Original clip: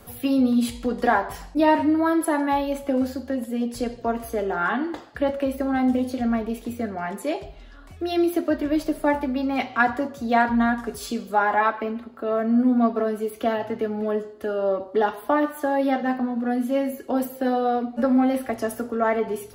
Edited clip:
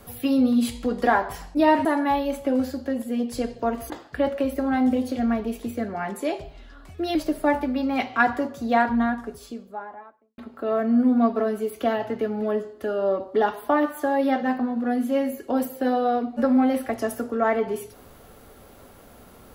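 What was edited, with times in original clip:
0:01.85–0:02.27: remove
0:04.32–0:04.92: remove
0:08.17–0:08.75: remove
0:10.10–0:11.98: fade out and dull

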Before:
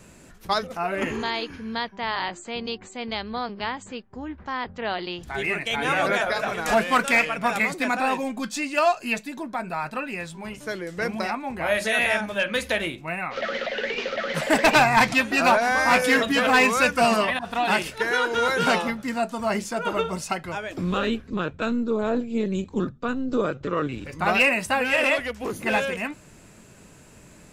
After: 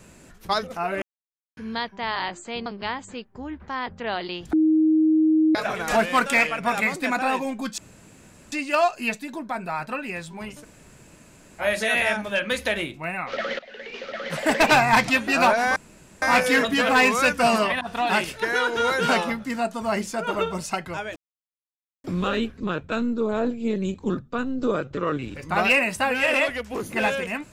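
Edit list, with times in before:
0:01.02–0:01.57: silence
0:02.66–0:03.44: remove
0:05.31–0:06.33: beep over 314 Hz −15 dBFS
0:08.56: splice in room tone 0.74 s
0:10.66–0:11.65: fill with room tone, crossfade 0.06 s
0:13.63–0:14.71: fade in, from −20 dB
0:15.80: splice in room tone 0.46 s
0:20.74: splice in silence 0.88 s

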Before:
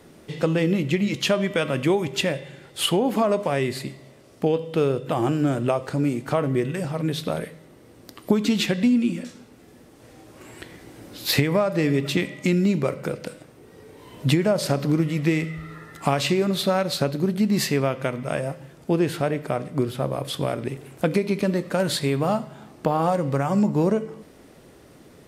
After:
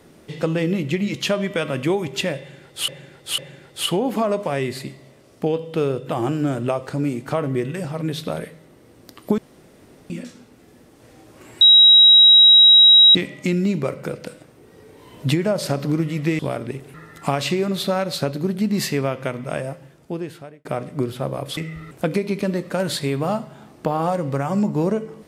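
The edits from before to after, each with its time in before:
0:02.38–0:02.88: repeat, 3 plays
0:08.38–0:09.10: fill with room tone
0:10.61–0:12.15: beep over 3,840 Hz −6.5 dBFS
0:15.39–0:15.73: swap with 0:20.36–0:20.91
0:18.36–0:19.44: fade out

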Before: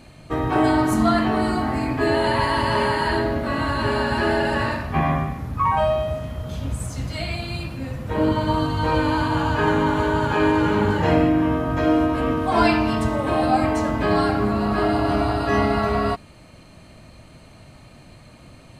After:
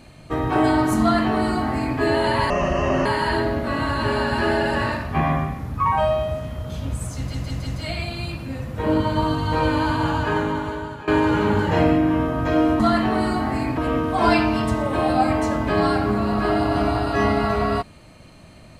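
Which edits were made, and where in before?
0:01.01–0:01.99: duplicate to 0:12.11
0:02.50–0:02.85: play speed 63%
0:06.98: stutter 0.16 s, 4 plays
0:09.38–0:10.39: fade out, to −18 dB

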